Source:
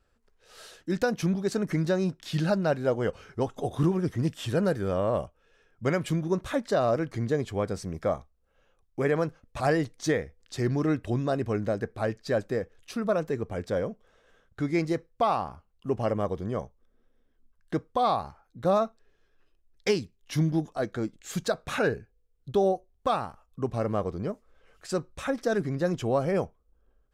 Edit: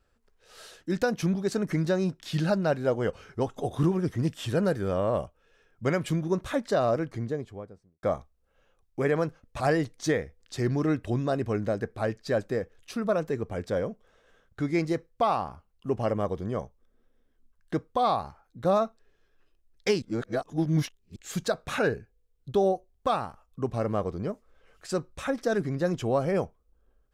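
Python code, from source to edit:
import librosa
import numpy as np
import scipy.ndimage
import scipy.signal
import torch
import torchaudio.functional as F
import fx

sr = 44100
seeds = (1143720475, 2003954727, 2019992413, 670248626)

y = fx.studio_fade_out(x, sr, start_s=6.79, length_s=1.24)
y = fx.edit(y, sr, fx.reverse_span(start_s=20.02, length_s=1.14), tone=tone)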